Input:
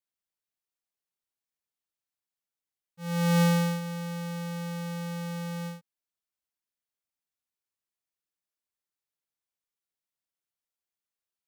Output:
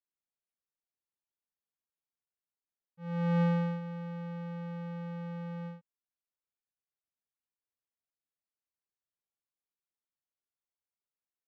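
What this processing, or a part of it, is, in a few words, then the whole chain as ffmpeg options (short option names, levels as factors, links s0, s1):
phone in a pocket: -af "lowpass=3100,highshelf=f=2400:g=-12,volume=0.596"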